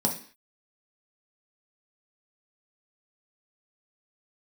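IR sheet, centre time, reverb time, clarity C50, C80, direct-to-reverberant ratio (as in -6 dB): 17 ms, 0.45 s, 9.5 dB, 14.5 dB, 0.0 dB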